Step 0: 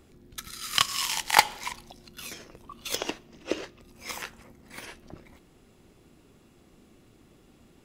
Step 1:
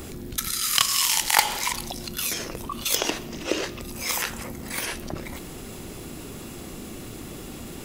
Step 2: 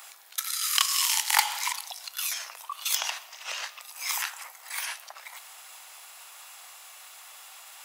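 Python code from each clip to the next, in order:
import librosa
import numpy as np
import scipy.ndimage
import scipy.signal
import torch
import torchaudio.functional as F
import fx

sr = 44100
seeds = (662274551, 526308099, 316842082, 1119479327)

y1 = fx.high_shelf(x, sr, hz=6900.0, db=10.5)
y1 = fx.env_flatten(y1, sr, amount_pct=50)
y1 = y1 * 10.0 ** (-3.5 / 20.0)
y2 = scipy.signal.sosfilt(scipy.signal.butter(6, 770.0, 'highpass', fs=sr, output='sos'), y1)
y2 = y2 * 10.0 ** (-3.0 / 20.0)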